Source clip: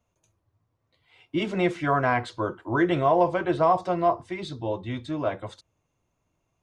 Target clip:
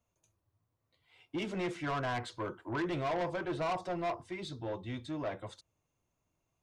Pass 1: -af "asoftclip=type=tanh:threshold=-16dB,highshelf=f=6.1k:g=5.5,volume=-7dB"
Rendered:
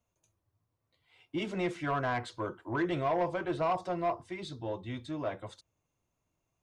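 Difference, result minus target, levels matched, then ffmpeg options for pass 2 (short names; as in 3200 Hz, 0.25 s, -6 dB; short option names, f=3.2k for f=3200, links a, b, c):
soft clip: distortion -7 dB
-af "asoftclip=type=tanh:threshold=-23dB,highshelf=f=6.1k:g=5.5,volume=-7dB"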